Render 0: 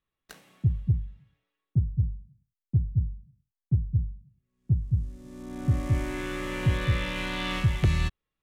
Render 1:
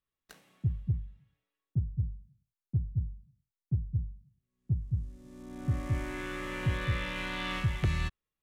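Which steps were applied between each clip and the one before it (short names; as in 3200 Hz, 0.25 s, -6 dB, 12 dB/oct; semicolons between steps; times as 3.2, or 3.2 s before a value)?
dynamic EQ 1500 Hz, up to +4 dB, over -45 dBFS, Q 0.89; gain -6 dB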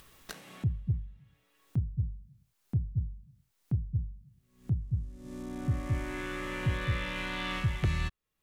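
upward compressor, threshold -32 dBFS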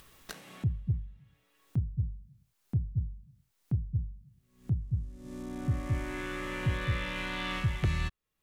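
nothing audible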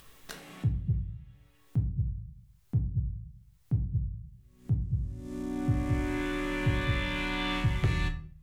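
shoebox room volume 44 m³, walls mixed, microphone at 0.39 m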